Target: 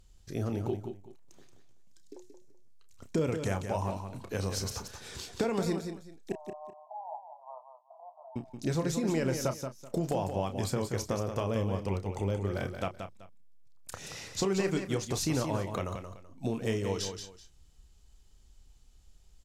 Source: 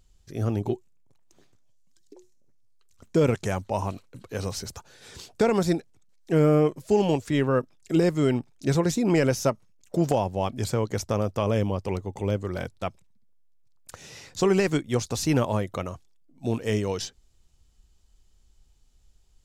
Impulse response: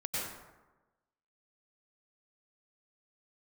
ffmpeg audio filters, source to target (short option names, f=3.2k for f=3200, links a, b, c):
-filter_complex "[0:a]acompressor=threshold=-31dB:ratio=3,asettb=1/sr,asplit=3[a][b][c];[a]atrim=end=6.324[d];[b]atrim=start=6.32:end=8.36,asetpts=PTS-STARTPTS,afade=t=in:d=0.004:c=qsin,afade=t=out:st=2.036:d=0.004:c=qsin,asuperpass=centerf=810:order=12:qfactor=2[e];[c]atrim=start=8.356[f];[d][e]acrossfade=d=0.004:c1=hsin:c2=qsin[g];[g][f]acrossfade=d=0.004:c1=qsin:c2=hsin,asplit=2[h][i];[i]adelay=31,volume=-10dB[j];[h][j]amix=inputs=2:normalize=0,aecho=1:1:178|381:0.422|0.1[k];[1:a]atrim=start_sample=2205,atrim=end_sample=3528,asetrate=29988,aresample=44100[l];[k][l]afir=irnorm=-1:irlink=0,volume=2dB"